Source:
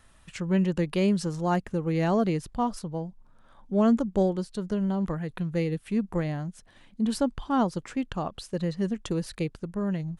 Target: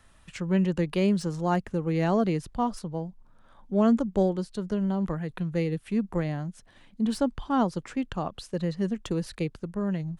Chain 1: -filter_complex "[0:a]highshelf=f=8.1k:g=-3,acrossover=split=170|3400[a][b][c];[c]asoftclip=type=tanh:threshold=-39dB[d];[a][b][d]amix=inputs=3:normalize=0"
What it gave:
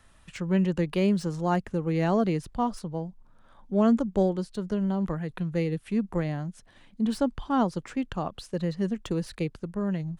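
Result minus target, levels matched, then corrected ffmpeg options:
soft clip: distortion +7 dB
-filter_complex "[0:a]highshelf=f=8.1k:g=-3,acrossover=split=170|3400[a][b][c];[c]asoftclip=type=tanh:threshold=-32.5dB[d];[a][b][d]amix=inputs=3:normalize=0"

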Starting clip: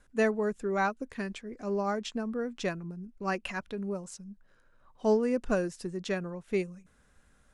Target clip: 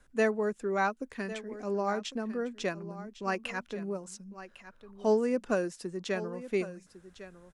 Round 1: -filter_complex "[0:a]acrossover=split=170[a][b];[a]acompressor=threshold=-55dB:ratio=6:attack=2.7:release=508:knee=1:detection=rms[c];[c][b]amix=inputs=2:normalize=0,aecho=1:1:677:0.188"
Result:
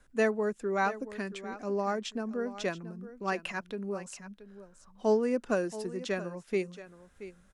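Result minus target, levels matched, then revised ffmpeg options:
echo 0.426 s early
-filter_complex "[0:a]acrossover=split=170[a][b];[a]acompressor=threshold=-55dB:ratio=6:attack=2.7:release=508:knee=1:detection=rms[c];[c][b]amix=inputs=2:normalize=0,aecho=1:1:1103:0.188"

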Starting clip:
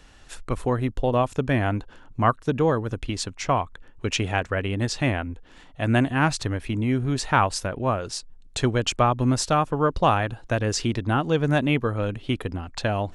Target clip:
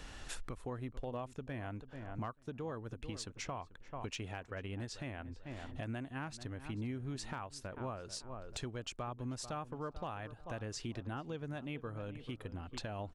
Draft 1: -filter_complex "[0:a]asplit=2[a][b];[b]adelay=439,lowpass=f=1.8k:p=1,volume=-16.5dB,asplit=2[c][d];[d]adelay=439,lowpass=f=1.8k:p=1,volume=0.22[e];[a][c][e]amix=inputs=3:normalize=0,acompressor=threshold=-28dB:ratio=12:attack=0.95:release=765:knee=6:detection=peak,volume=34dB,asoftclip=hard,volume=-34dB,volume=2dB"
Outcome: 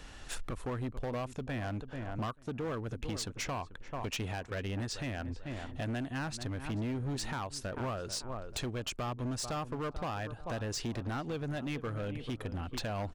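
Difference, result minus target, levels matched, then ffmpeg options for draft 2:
compressor: peak gain reduction -8.5 dB
-filter_complex "[0:a]asplit=2[a][b];[b]adelay=439,lowpass=f=1.8k:p=1,volume=-16.5dB,asplit=2[c][d];[d]adelay=439,lowpass=f=1.8k:p=1,volume=0.22[e];[a][c][e]amix=inputs=3:normalize=0,acompressor=threshold=-37dB:ratio=12:attack=0.95:release=765:knee=6:detection=peak,volume=34dB,asoftclip=hard,volume=-34dB,volume=2dB"

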